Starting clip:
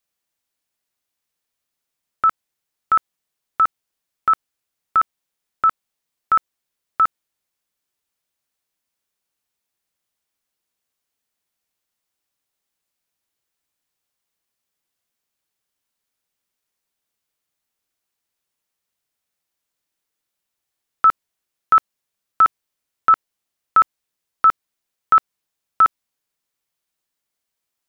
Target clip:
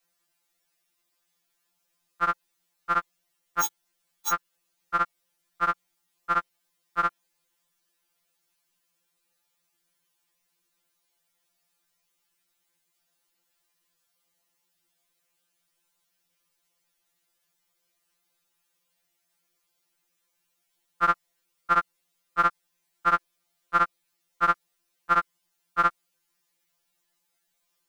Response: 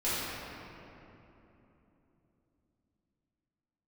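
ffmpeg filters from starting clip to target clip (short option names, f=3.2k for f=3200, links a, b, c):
-filter_complex "[0:a]asplit=3[a][b][c];[a]afade=t=out:st=3.61:d=0.02[d];[b]aeval=exprs='(mod(16.8*val(0)+1,2)-1)/16.8':c=same,afade=t=in:st=3.61:d=0.02,afade=t=out:st=4.29:d=0.02[e];[c]afade=t=in:st=4.29:d=0.02[f];[d][e][f]amix=inputs=3:normalize=0,afftfilt=real='re*2.83*eq(mod(b,8),0)':imag='im*2.83*eq(mod(b,8),0)':win_size=2048:overlap=0.75,volume=7dB"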